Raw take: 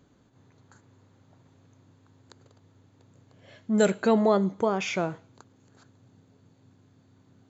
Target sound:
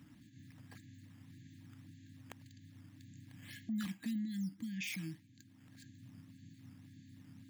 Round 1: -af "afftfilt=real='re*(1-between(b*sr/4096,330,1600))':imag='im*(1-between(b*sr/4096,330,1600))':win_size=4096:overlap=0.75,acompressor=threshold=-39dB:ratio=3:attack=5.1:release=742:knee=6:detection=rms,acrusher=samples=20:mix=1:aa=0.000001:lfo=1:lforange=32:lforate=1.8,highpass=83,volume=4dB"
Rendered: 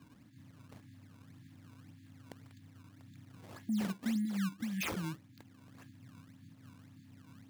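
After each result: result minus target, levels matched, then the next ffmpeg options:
decimation with a swept rate: distortion +7 dB; compressor: peak gain reduction -4.5 dB
-af "afftfilt=real='re*(1-between(b*sr/4096,330,1600))':imag='im*(1-between(b*sr/4096,330,1600))':win_size=4096:overlap=0.75,acompressor=threshold=-39dB:ratio=3:attack=5.1:release=742:knee=6:detection=rms,acrusher=samples=5:mix=1:aa=0.000001:lfo=1:lforange=8:lforate=1.8,highpass=83,volume=4dB"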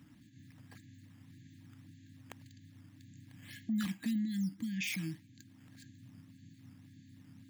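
compressor: peak gain reduction -4.5 dB
-af "afftfilt=real='re*(1-between(b*sr/4096,330,1600))':imag='im*(1-between(b*sr/4096,330,1600))':win_size=4096:overlap=0.75,acompressor=threshold=-45.5dB:ratio=3:attack=5.1:release=742:knee=6:detection=rms,acrusher=samples=5:mix=1:aa=0.000001:lfo=1:lforange=8:lforate=1.8,highpass=83,volume=4dB"

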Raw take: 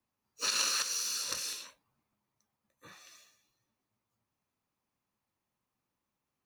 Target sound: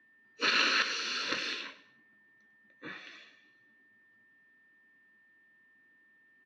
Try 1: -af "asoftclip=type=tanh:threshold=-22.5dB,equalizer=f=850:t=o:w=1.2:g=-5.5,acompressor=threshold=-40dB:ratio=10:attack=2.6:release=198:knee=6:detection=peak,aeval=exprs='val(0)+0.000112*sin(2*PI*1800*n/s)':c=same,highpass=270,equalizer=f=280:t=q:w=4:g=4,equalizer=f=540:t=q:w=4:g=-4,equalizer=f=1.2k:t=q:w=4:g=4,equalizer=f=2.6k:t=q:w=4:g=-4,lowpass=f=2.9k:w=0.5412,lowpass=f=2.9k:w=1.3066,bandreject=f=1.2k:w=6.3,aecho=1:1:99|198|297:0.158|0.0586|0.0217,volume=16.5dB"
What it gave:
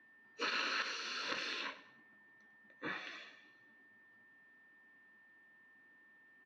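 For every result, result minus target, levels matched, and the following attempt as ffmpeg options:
compressor: peak gain reduction +13.5 dB; 1000 Hz band +3.5 dB
-af "asoftclip=type=tanh:threshold=-22.5dB,equalizer=f=850:t=o:w=1.2:g=-5.5,aeval=exprs='val(0)+0.000112*sin(2*PI*1800*n/s)':c=same,highpass=270,equalizer=f=280:t=q:w=4:g=4,equalizer=f=540:t=q:w=4:g=-4,equalizer=f=1.2k:t=q:w=4:g=4,equalizer=f=2.6k:t=q:w=4:g=-4,lowpass=f=2.9k:w=0.5412,lowpass=f=2.9k:w=1.3066,bandreject=f=1.2k:w=6.3,aecho=1:1:99|198|297:0.158|0.0586|0.0217,volume=16.5dB"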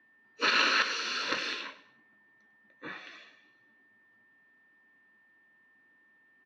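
1000 Hz band +3.0 dB
-af "asoftclip=type=tanh:threshold=-22.5dB,equalizer=f=850:t=o:w=1.2:g=-13,aeval=exprs='val(0)+0.000112*sin(2*PI*1800*n/s)':c=same,highpass=270,equalizer=f=280:t=q:w=4:g=4,equalizer=f=540:t=q:w=4:g=-4,equalizer=f=1.2k:t=q:w=4:g=4,equalizer=f=2.6k:t=q:w=4:g=-4,lowpass=f=2.9k:w=0.5412,lowpass=f=2.9k:w=1.3066,bandreject=f=1.2k:w=6.3,aecho=1:1:99|198|297:0.158|0.0586|0.0217,volume=16.5dB"

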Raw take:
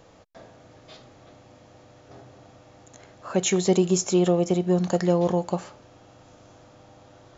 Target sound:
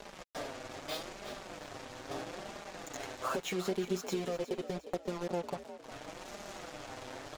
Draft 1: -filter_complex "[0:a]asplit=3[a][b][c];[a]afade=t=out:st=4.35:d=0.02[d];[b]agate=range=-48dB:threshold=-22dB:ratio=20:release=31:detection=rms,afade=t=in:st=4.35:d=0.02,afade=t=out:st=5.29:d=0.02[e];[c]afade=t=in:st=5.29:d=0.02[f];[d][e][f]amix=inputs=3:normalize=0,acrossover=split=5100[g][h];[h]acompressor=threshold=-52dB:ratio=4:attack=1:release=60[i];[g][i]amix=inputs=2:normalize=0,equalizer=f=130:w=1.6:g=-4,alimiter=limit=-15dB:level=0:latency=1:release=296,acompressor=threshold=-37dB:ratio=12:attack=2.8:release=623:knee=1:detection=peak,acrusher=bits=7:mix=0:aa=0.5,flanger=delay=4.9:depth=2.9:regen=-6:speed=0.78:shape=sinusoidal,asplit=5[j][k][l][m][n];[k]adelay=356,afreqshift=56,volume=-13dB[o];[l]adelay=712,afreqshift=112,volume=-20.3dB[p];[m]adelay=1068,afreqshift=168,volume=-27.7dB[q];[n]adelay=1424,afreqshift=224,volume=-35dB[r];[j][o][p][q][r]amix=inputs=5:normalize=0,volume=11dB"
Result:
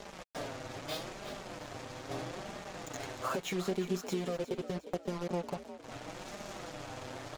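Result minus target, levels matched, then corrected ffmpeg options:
125 Hz band +3.5 dB
-filter_complex "[0:a]asplit=3[a][b][c];[a]afade=t=out:st=4.35:d=0.02[d];[b]agate=range=-48dB:threshold=-22dB:ratio=20:release=31:detection=rms,afade=t=in:st=4.35:d=0.02,afade=t=out:st=5.29:d=0.02[e];[c]afade=t=in:st=5.29:d=0.02[f];[d][e][f]amix=inputs=3:normalize=0,acrossover=split=5100[g][h];[h]acompressor=threshold=-52dB:ratio=4:attack=1:release=60[i];[g][i]amix=inputs=2:normalize=0,equalizer=f=130:w=1.6:g=-13,alimiter=limit=-15dB:level=0:latency=1:release=296,acompressor=threshold=-37dB:ratio=12:attack=2.8:release=623:knee=1:detection=peak,acrusher=bits=7:mix=0:aa=0.5,flanger=delay=4.9:depth=2.9:regen=-6:speed=0.78:shape=sinusoidal,asplit=5[j][k][l][m][n];[k]adelay=356,afreqshift=56,volume=-13dB[o];[l]adelay=712,afreqshift=112,volume=-20.3dB[p];[m]adelay=1068,afreqshift=168,volume=-27.7dB[q];[n]adelay=1424,afreqshift=224,volume=-35dB[r];[j][o][p][q][r]amix=inputs=5:normalize=0,volume=11dB"

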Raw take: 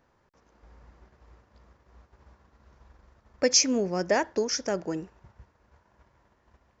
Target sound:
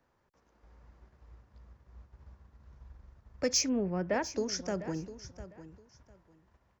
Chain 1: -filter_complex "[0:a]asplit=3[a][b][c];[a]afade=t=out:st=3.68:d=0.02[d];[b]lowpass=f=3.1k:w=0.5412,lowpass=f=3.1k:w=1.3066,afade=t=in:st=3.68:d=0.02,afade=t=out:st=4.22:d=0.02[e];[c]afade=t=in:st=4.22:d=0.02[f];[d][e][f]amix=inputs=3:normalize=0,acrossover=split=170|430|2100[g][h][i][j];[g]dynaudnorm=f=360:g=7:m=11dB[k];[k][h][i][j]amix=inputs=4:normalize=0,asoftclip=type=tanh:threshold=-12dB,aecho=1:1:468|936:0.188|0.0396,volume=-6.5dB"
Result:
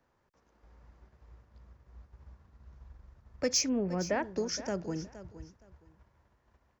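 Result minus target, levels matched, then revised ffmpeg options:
echo 0.234 s early
-filter_complex "[0:a]asplit=3[a][b][c];[a]afade=t=out:st=3.68:d=0.02[d];[b]lowpass=f=3.1k:w=0.5412,lowpass=f=3.1k:w=1.3066,afade=t=in:st=3.68:d=0.02,afade=t=out:st=4.22:d=0.02[e];[c]afade=t=in:st=4.22:d=0.02[f];[d][e][f]amix=inputs=3:normalize=0,acrossover=split=170|430|2100[g][h][i][j];[g]dynaudnorm=f=360:g=7:m=11dB[k];[k][h][i][j]amix=inputs=4:normalize=0,asoftclip=type=tanh:threshold=-12dB,aecho=1:1:702|1404:0.188|0.0396,volume=-6.5dB"

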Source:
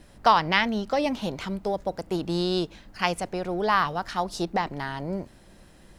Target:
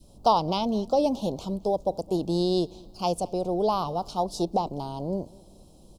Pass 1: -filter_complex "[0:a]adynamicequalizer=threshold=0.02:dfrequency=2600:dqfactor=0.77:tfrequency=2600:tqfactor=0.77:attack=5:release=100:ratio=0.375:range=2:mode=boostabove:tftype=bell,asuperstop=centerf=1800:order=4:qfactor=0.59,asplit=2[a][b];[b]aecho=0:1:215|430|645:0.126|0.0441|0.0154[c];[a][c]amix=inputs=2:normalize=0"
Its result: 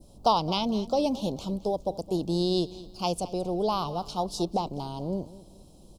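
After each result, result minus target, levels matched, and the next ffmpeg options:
2000 Hz band +4.5 dB; echo-to-direct +6.5 dB
-filter_complex "[0:a]adynamicequalizer=threshold=0.02:dfrequency=660:dqfactor=0.77:tfrequency=660:tqfactor=0.77:attack=5:release=100:ratio=0.375:range=2:mode=boostabove:tftype=bell,asuperstop=centerf=1800:order=4:qfactor=0.59,asplit=2[a][b];[b]aecho=0:1:215|430|645:0.126|0.0441|0.0154[c];[a][c]amix=inputs=2:normalize=0"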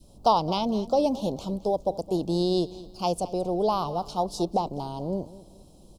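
echo-to-direct +6.5 dB
-filter_complex "[0:a]adynamicequalizer=threshold=0.02:dfrequency=660:dqfactor=0.77:tfrequency=660:tqfactor=0.77:attack=5:release=100:ratio=0.375:range=2:mode=boostabove:tftype=bell,asuperstop=centerf=1800:order=4:qfactor=0.59,asplit=2[a][b];[b]aecho=0:1:215|430:0.0596|0.0208[c];[a][c]amix=inputs=2:normalize=0"

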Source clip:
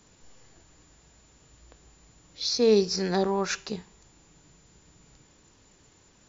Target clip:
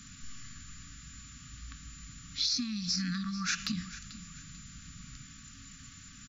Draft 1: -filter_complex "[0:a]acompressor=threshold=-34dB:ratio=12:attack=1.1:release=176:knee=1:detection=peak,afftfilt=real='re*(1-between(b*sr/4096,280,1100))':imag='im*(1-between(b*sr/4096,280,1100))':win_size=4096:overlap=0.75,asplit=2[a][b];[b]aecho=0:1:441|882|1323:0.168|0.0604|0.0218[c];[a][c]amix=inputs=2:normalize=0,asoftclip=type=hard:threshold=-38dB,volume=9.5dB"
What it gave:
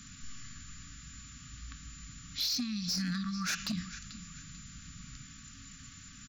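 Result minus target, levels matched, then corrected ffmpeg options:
hard clip: distortion +22 dB
-filter_complex "[0:a]acompressor=threshold=-34dB:ratio=12:attack=1.1:release=176:knee=1:detection=peak,afftfilt=real='re*(1-between(b*sr/4096,280,1100))':imag='im*(1-between(b*sr/4096,280,1100))':win_size=4096:overlap=0.75,asplit=2[a][b];[b]aecho=0:1:441|882|1323:0.168|0.0604|0.0218[c];[a][c]amix=inputs=2:normalize=0,asoftclip=type=hard:threshold=-27.5dB,volume=9.5dB"

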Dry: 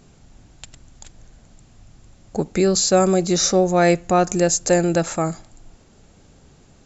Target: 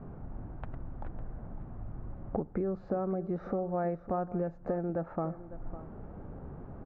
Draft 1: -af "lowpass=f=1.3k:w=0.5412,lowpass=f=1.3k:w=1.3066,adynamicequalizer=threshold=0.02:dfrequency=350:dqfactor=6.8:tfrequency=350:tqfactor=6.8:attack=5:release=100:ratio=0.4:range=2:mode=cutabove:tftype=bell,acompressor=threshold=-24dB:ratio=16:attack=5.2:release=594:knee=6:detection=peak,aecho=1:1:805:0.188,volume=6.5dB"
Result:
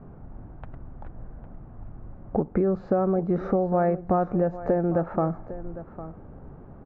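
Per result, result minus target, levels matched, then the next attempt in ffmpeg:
compressor: peak gain reduction -9.5 dB; echo 0.252 s late
-af "lowpass=f=1.3k:w=0.5412,lowpass=f=1.3k:w=1.3066,adynamicequalizer=threshold=0.02:dfrequency=350:dqfactor=6.8:tfrequency=350:tqfactor=6.8:attack=5:release=100:ratio=0.4:range=2:mode=cutabove:tftype=bell,acompressor=threshold=-34dB:ratio=16:attack=5.2:release=594:knee=6:detection=peak,aecho=1:1:805:0.188,volume=6.5dB"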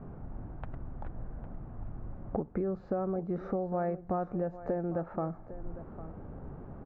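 echo 0.252 s late
-af "lowpass=f=1.3k:w=0.5412,lowpass=f=1.3k:w=1.3066,adynamicequalizer=threshold=0.02:dfrequency=350:dqfactor=6.8:tfrequency=350:tqfactor=6.8:attack=5:release=100:ratio=0.4:range=2:mode=cutabove:tftype=bell,acompressor=threshold=-34dB:ratio=16:attack=5.2:release=594:knee=6:detection=peak,aecho=1:1:553:0.188,volume=6.5dB"

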